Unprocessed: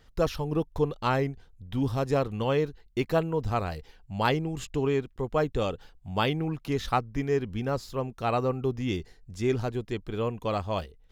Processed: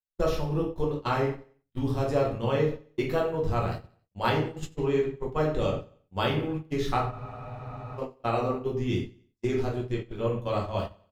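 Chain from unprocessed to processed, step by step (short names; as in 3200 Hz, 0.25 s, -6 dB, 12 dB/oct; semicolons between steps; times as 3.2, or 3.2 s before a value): shoebox room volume 92 m³, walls mixed, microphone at 0.99 m; gate -26 dBFS, range -50 dB; feedback echo 91 ms, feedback 42%, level -23 dB; spectral freeze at 7.12, 0.86 s; gain -4.5 dB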